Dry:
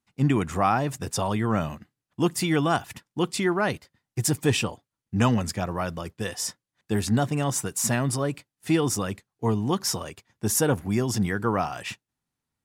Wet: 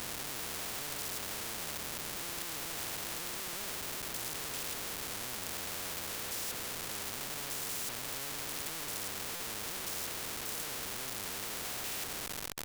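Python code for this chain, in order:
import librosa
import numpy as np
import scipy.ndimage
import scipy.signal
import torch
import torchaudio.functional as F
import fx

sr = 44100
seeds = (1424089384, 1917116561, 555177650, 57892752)

p1 = fx.spec_steps(x, sr, hold_ms=200)
p2 = fx.over_compress(p1, sr, threshold_db=-34.0, ratio=-1.0)
p3 = fx.peak_eq(p2, sr, hz=450.0, db=12.5, octaves=1.0)
p4 = fx.power_curve(p3, sr, exponent=0.5)
p5 = fx.peak_eq(p4, sr, hz=63.0, db=6.0, octaves=1.2)
p6 = p5 + fx.echo_banded(p5, sr, ms=202, feedback_pct=67, hz=350.0, wet_db=-7.5, dry=0)
p7 = fx.schmitt(p6, sr, flips_db=-33.5)
p8 = fx.buffer_glitch(p7, sr, at_s=(9.35,), block=256, repeats=8)
p9 = fx.spectral_comp(p8, sr, ratio=4.0)
y = p9 * librosa.db_to_amplitude(-3.5)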